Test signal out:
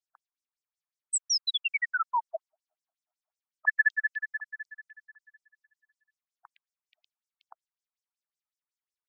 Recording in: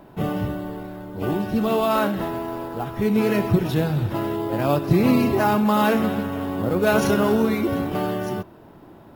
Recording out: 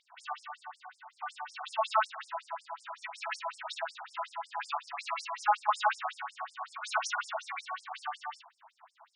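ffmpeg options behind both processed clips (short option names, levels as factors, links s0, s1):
-af "afftfilt=real='re*between(b*sr/1024,890*pow(7100/890,0.5+0.5*sin(2*PI*5.4*pts/sr))/1.41,890*pow(7100/890,0.5+0.5*sin(2*PI*5.4*pts/sr))*1.41)':imag='im*between(b*sr/1024,890*pow(7100/890,0.5+0.5*sin(2*PI*5.4*pts/sr))/1.41,890*pow(7100/890,0.5+0.5*sin(2*PI*5.4*pts/sr))*1.41)':win_size=1024:overlap=0.75"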